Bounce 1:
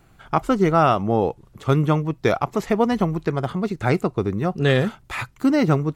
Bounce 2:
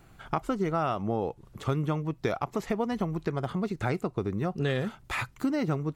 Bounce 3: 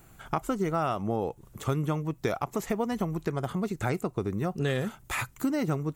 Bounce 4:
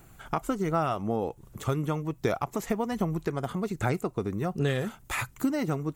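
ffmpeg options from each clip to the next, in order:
-af "acompressor=threshold=0.0447:ratio=3,volume=0.891"
-af "aexciter=amount=1.8:drive=8.5:freq=6400"
-af "aphaser=in_gain=1:out_gain=1:delay=4.3:decay=0.22:speed=1.3:type=sinusoidal"

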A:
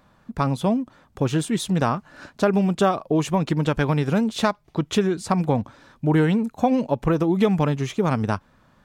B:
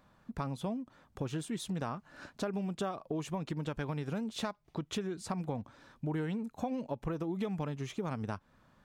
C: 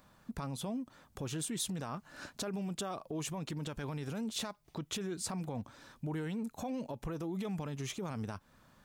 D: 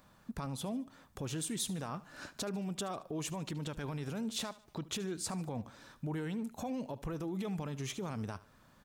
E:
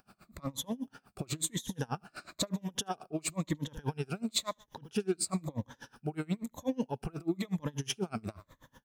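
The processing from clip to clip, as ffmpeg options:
-af "acompressor=threshold=0.0355:ratio=2.5,volume=0.422"
-af "alimiter=level_in=2.66:limit=0.0631:level=0:latency=1:release=16,volume=0.376,highshelf=f=4900:g=11,volume=1.12"
-af "aecho=1:1:74|148|222:0.126|0.0516|0.0212"
-af "afftfilt=real='re*pow(10,12/40*sin(2*PI*(1.1*log(max(b,1)*sr/1024/100)/log(2)-(-1)*(pts-256)/sr)))':imag='im*pow(10,12/40*sin(2*PI*(1.1*log(max(b,1)*sr/1024/100)/log(2)-(-1)*(pts-256)/sr)))':win_size=1024:overlap=0.75,aeval=exprs='val(0)*pow(10,-30*(0.5-0.5*cos(2*PI*8.2*n/s))/20)':c=same,volume=2.37"

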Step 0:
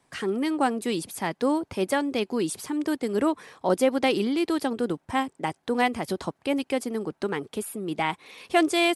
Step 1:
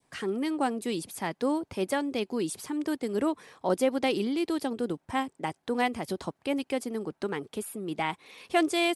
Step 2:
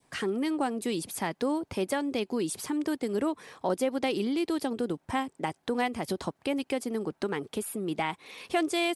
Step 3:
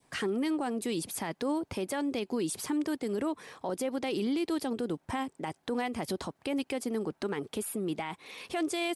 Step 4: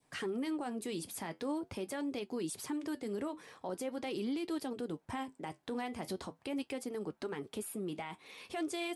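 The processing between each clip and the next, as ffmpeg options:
-af "adynamicequalizer=threshold=0.0112:dfrequency=1400:dqfactor=1:tfrequency=1400:tqfactor=1:attack=5:release=100:ratio=0.375:range=2:mode=cutabove:tftype=bell,volume=0.668"
-af "acompressor=threshold=0.0224:ratio=2,volume=1.58"
-af "alimiter=limit=0.0631:level=0:latency=1:release=20"
-af "flanger=delay=6.6:depth=4.7:regen=-66:speed=0.43:shape=sinusoidal,volume=0.794"

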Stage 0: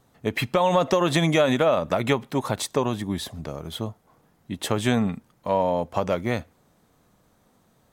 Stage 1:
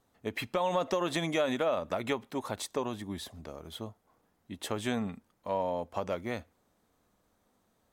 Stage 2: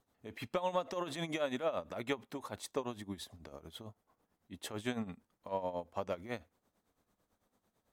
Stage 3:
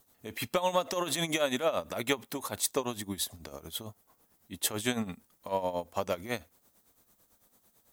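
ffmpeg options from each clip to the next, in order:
-af "equalizer=f=140:w=2.6:g=-9.5,volume=0.355"
-af "tremolo=f=9:d=0.74,volume=0.708"
-af "aemphasis=mode=production:type=75kf,volume=1.88"

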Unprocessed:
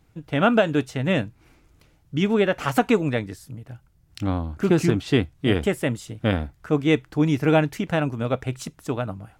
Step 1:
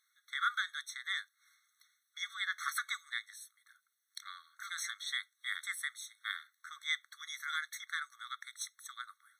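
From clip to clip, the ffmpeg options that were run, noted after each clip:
-af "equalizer=f=800:w=0.7:g=-13.5,afftfilt=real='re*eq(mod(floor(b*sr/1024/1100),2),1)':imag='im*eq(mod(floor(b*sr/1024/1100),2),1)':win_size=1024:overlap=0.75"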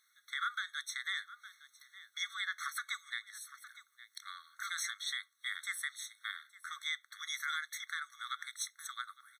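-af "aecho=1:1:861:0.0794,alimiter=level_in=2.11:limit=0.0631:level=0:latency=1:release=374,volume=0.473,volume=1.68"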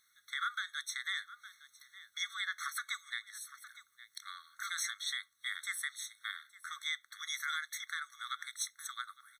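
-af "bass=f=250:g=10,treble=f=4000:g=2"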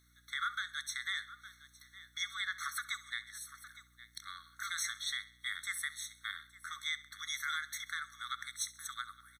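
-af "aeval=exprs='val(0)+0.000355*(sin(2*PI*60*n/s)+sin(2*PI*2*60*n/s)/2+sin(2*PI*3*60*n/s)/3+sin(2*PI*4*60*n/s)/4+sin(2*PI*5*60*n/s)/5)':c=same,aecho=1:1:66|132|198|264:0.126|0.0592|0.0278|0.0131"

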